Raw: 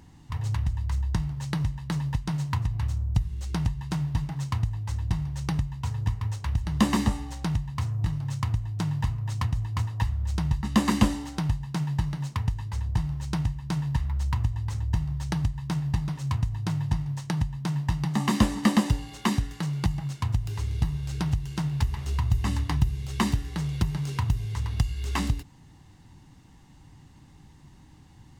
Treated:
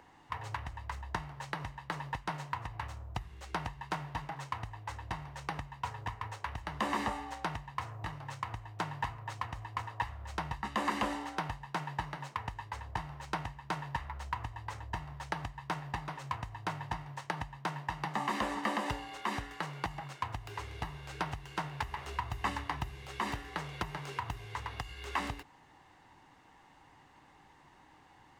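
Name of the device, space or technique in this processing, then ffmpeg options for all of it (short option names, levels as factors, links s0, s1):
DJ mixer with the lows and highs turned down: -filter_complex "[0:a]acrossover=split=430 2600:gain=0.0794 1 0.2[s0][s1][s2];[s0][s1][s2]amix=inputs=3:normalize=0,alimiter=level_in=1.06:limit=0.0631:level=0:latency=1:release=111,volume=0.944,volume=1.68"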